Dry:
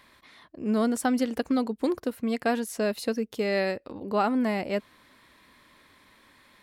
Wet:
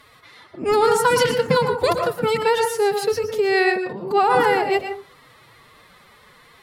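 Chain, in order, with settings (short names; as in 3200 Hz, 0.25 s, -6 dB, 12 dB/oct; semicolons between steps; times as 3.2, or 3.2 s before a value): formant-preserving pitch shift +11.5 st; on a send: reverb RT60 0.35 s, pre-delay 0.107 s, DRR 5 dB; on the sum: gain +7.5 dB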